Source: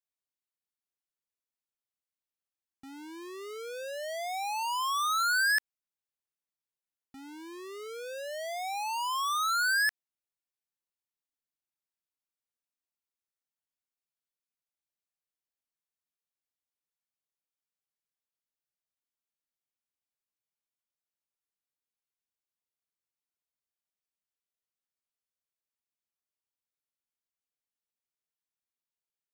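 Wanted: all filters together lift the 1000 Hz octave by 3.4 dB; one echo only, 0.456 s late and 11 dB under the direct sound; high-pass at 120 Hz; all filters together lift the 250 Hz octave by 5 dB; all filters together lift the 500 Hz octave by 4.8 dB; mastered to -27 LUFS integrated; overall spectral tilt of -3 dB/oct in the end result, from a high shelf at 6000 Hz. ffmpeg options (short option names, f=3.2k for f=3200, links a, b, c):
-af "highpass=120,equalizer=f=250:t=o:g=5,equalizer=f=500:t=o:g=4,equalizer=f=1k:t=o:g=3,highshelf=f=6k:g=7,aecho=1:1:456:0.282,volume=0.5dB"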